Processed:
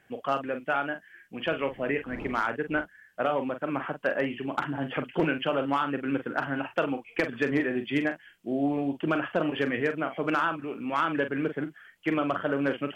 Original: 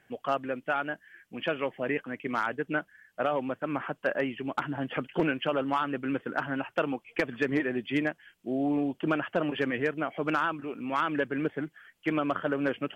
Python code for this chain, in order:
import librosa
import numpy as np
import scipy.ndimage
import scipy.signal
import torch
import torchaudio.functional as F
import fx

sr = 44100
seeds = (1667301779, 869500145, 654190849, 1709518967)

y = fx.dmg_wind(x, sr, seeds[0], corner_hz=370.0, level_db=-39.0, at=(1.44, 2.8), fade=0.02)
y = fx.doubler(y, sr, ms=43.0, db=-9.0)
y = F.gain(torch.from_numpy(y), 1.0).numpy()